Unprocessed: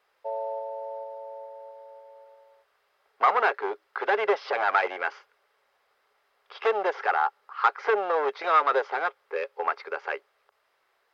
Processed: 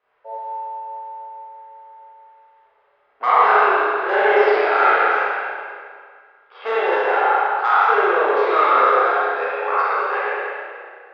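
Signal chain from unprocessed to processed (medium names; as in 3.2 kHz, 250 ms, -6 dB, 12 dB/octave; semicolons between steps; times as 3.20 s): spectral sustain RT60 1.95 s; level-controlled noise filter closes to 2.6 kHz, open at -17.5 dBFS; spring tank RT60 1.4 s, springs 31/39 ms, chirp 25 ms, DRR -8 dB; trim -5 dB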